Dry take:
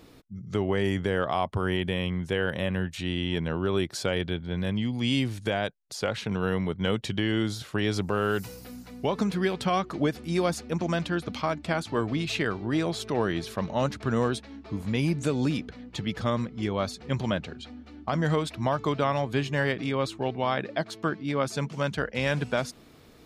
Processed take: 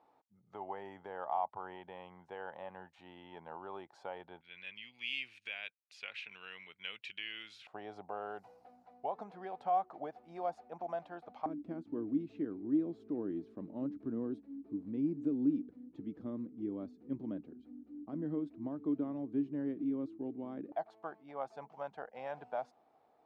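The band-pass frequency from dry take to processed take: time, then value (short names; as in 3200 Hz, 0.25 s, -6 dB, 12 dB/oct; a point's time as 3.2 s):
band-pass, Q 6.6
840 Hz
from 4.41 s 2500 Hz
from 7.67 s 750 Hz
from 11.46 s 290 Hz
from 20.72 s 770 Hz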